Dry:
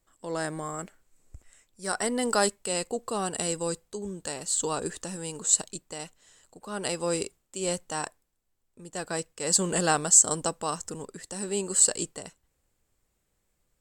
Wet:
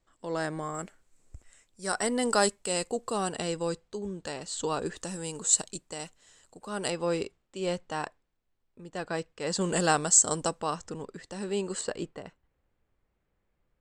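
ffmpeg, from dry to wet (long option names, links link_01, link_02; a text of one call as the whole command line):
ffmpeg -i in.wav -af "asetnsamples=nb_out_samples=441:pad=0,asendcmd='0.75 lowpass f 9700;3.33 lowpass f 4700;4.97 lowpass f 9700;6.9 lowpass f 3700;9.61 lowpass f 7700;10.61 lowpass f 4200;11.81 lowpass f 2400',lowpass=5500" out.wav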